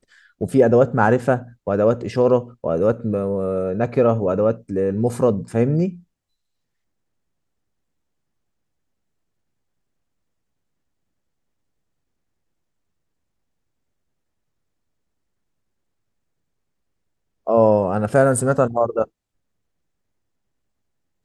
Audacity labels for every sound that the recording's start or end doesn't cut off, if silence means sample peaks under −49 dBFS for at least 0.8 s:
17.470000	19.080000	sound